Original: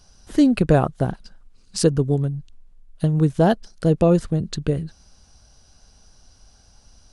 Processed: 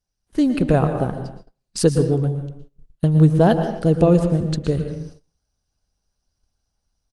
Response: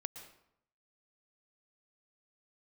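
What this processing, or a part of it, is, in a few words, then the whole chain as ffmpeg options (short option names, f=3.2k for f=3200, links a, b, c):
speakerphone in a meeting room: -filter_complex "[1:a]atrim=start_sample=2205[a];[0:a][a]afir=irnorm=-1:irlink=0,asplit=2[b][c];[c]adelay=270,highpass=300,lowpass=3.4k,asoftclip=type=hard:threshold=-15dB,volume=-20dB[d];[b][d]amix=inputs=2:normalize=0,dynaudnorm=f=470:g=3:m=6dB,agate=range=-24dB:threshold=-37dB:ratio=16:detection=peak" -ar 48000 -c:a libopus -b:a 32k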